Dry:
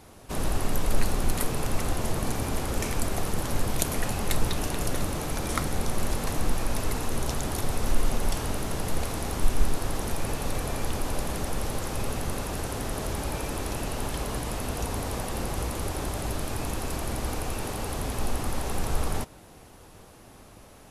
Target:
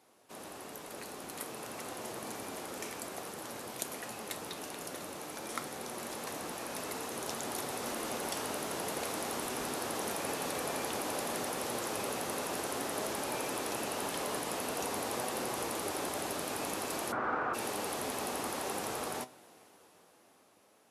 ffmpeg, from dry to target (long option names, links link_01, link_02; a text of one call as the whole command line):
ffmpeg -i in.wav -filter_complex "[0:a]highpass=290,dynaudnorm=framelen=410:gausssize=9:maxgain=11.5dB,asplit=3[link_01][link_02][link_03];[link_01]afade=type=out:start_time=17.11:duration=0.02[link_04];[link_02]lowpass=frequency=1400:width_type=q:width=4.6,afade=type=in:start_time=17.11:duration=0.02,afade=type=out:start_time=17.53:duration=0.02[link_05];[link_03]afade=type=in:start_time=17.53:duration=0.02[link_06];[link_04][link_05][link_06]amix=inputs=3:normalize=0,flanger=delay=7.9:depth=4:regen=78:speed=0.52:shape=sinusoidal,volume=-8.5dB" out.wav